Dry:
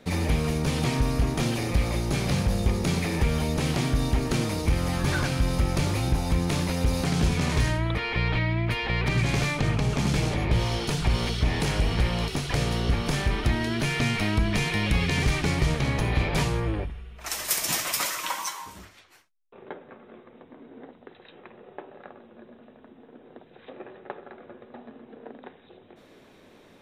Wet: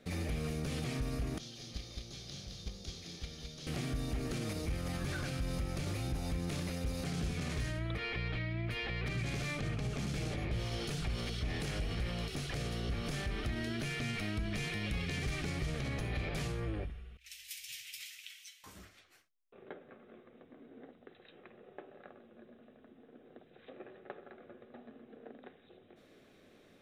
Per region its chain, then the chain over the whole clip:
1.38–3.67 band shelf 4500 Hz +14 dB 1.3 oct + gate -18 dBFS, range -18 dB + echo 0.213 s -3.5 dB
17.17–18.64 inverse Chebyshev band-stop 320–880 Hz, stop band 70 dB + three-band isolator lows -17 dB, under 340 Hz, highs -14 dB, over 3100 Hz
whole clip: bell 940 Hz -12 dB 0.25 oct; limiter -21 dBFS; gain -8 dB

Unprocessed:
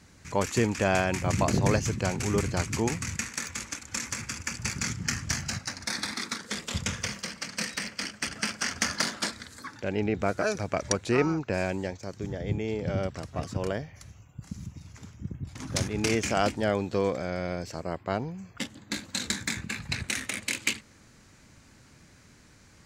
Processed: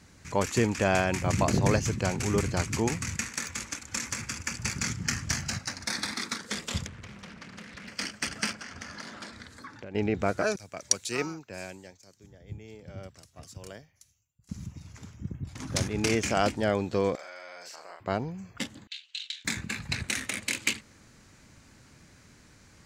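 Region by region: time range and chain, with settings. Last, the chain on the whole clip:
6.86–7.88 tone controls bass +6 dB, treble -13 dB + compressor, threshold -41 dBFS + Doppler distortion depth 0.54 ms
8.53–9.95 LPF 3300 Hz 6 dB/oct + compressor, threshold -38 dBFS
10.56–14.49 pre-emphasis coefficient 0.8 + three-band expander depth 100%
17.15–18 HPF 930 Hz + compressor 4:1, threshold -42 dBFS + doubler 41 ms -2 dB
18.87–19.45 ladder band-pass 3100 Hz, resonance 75% + dynamic EQ 3800 Hz, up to +6 dB, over -55 dBFS, Q 1.6
whole clip: dry

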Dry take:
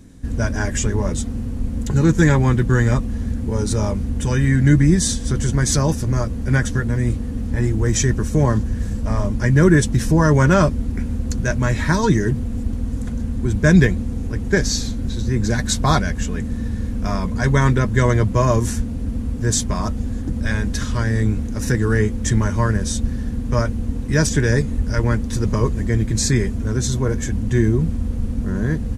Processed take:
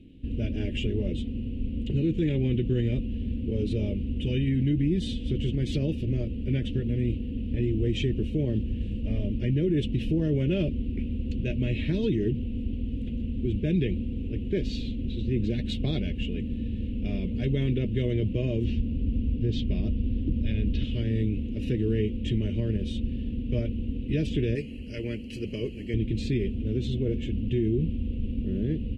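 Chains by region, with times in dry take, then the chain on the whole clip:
18.64–20.84 Chebyshev low-pass 5300 Hz, order 3 + low shelf 150 Hz +6 dB
24.55–25.94 Butterworth band-stop 3600 Hz, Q 4 + tilt +3 dB/oct
whole clip: EQ curve 170 Hz 0 dB, 350 Hz +6 dB, 590 Hz -4 dB, 1000 Hz -30 dB, 1600 Hz -20 dB, 2800 Hz +13 dB, 6000 Hz -24 dB, 11000 Hz -22 dB; limiter -9.5 dBFS; gain -8 dB

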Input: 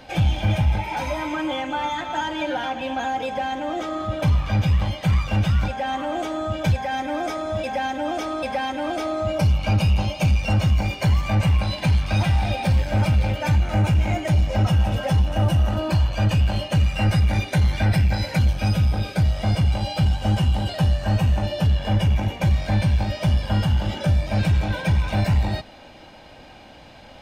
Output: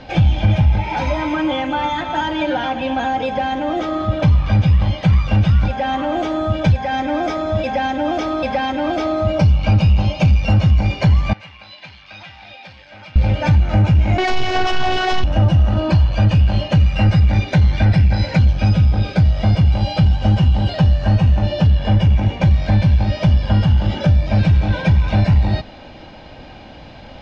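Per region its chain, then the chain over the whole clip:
11.33–13.16 LPF 2900 Hz + differentiator
14.18–15.24 overdrive pedal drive 29 dB, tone 4900 Hz, clips at -11.5 dBFS + robotiser 370 Hz
whole clip: LPF 5600 Hz 24 dB/oct; low shelf 330 Hz +6 dB; compressor 2:1, threshold -17 dBFS; gain +4.5 dB

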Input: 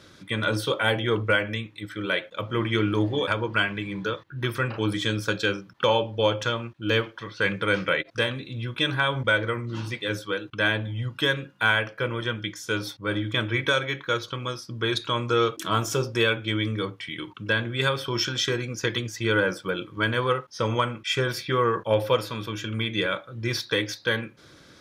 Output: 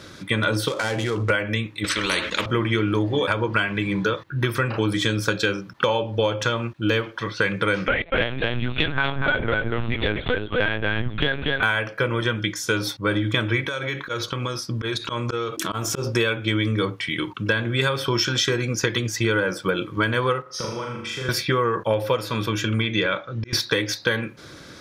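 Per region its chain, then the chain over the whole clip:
0.68–1.3 switching dead time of 0.091 ms + LPF 7500 Hz + compressor 10:1, threshold -28 dBFS
1.84–2.46 air absorption 78 m + fixed phaser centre 310 Hz, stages 4 + spectral compressor 4:1
7.88–11.63 echo 0.24 s -4.5 dB + LPC vocoder at 8 kHz pitch kept
13.62–16.07 auto swell 0.12 s + compressor 16:1, threshold -30 dBFS
20.42–21.29 compressor 12:1, threshold -36 dBFS + flutter echo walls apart 6.8 m, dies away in 0.81 s + three-band expander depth 40%
22.81–23.53 Chebyshev low-pass 6300 Hz, order 4 + auto swell 0.6 s
whole clip: bell 3200 Hz -2.5 dB 0.27 oct; compressor, threshold -27 dBFS; gain +9 dB

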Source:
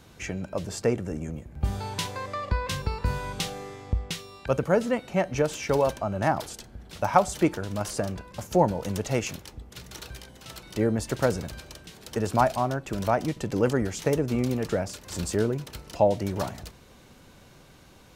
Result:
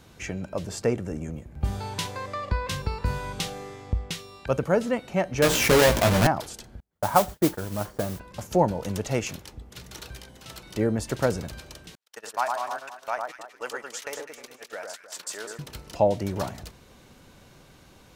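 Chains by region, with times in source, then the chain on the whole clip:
5.42–6.27 half-waves squared off + doubler 17 ms -3.5 dB + fast leveller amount 50%
6.8–8.2 gate -36 dBFS, range -36 dB + polynomial smoothing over 41 samples + modulation noise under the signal 12 dB
11.95–15.59 HPF 1000 Hz + gate -41 dBFS, range -40 dB + echo with dull and thin repeats by turns 0.103 s, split 1600 Hz, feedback 55%, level -3 dB
whole clip: dry

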